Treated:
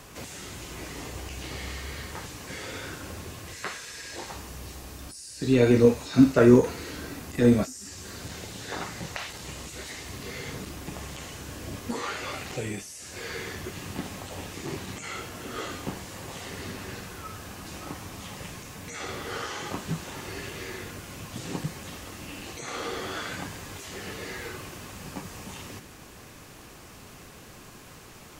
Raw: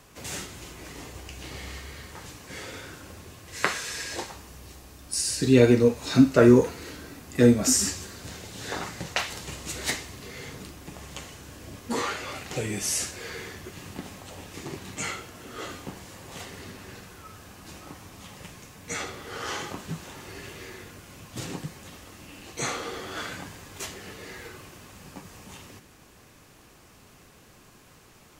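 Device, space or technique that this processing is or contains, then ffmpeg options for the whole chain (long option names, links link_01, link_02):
de-esser from a sidechain: -filter_complex "[0:a]asplit=2[link_01][link_02];[link_02]highpass=6900,apad=whole_len=1252383[link_03];[link_01][link_03]sidechaincompress=threshold=-51dB:ratio=6:attack=0.51:release=21,volume=6.5dB"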